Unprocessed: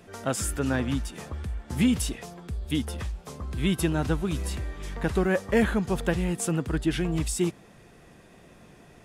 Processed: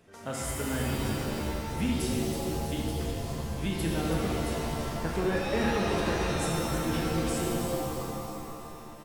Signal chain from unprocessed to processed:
echo with shifted repeats 326 ms, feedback 53%, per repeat −41 Hz, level −9 dB
reverb with rising layers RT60 2.3 s, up +7 semitones, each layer −2 dB, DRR −2 dB
level −9 dB

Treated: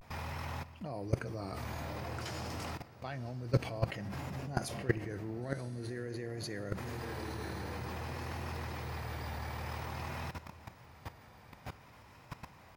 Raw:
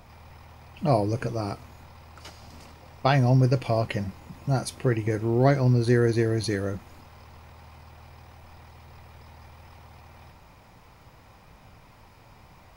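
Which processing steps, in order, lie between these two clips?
high-pass filter 69 Hz 12 dB per octave
parametric band 1,700 Hz +4 dB 0.45 octaves
reversed playback
downward compressor 16 to 1, threshold −33 dBFS, peak gain reduction 20 dB
reversed playback
feedback delay with all-pass diffusion 1,023 ms, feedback 47%, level −12 dB
output level in coarse steps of 17 dB
pitch vibrato 0.51 Hz 72 cents
on a send at −18 dB: convolution reverb RT60 3.1 s, pre-delay 3 ms
on the sum: level +10.5 dB

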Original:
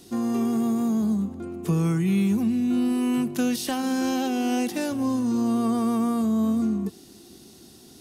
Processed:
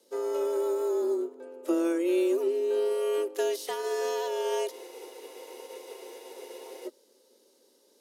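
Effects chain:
frequency shifter +170 Hz
frozen spectrum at 0:04.73, 2.13 s
expander for the loud parts 1.5 to 1, over −44 dBFS
level −3 dB

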